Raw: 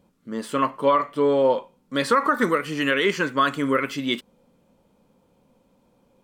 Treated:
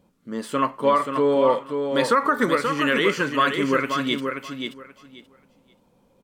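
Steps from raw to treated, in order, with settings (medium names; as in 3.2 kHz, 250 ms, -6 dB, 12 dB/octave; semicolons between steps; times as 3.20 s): feedback delay 531 ms, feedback 18%, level -6 dB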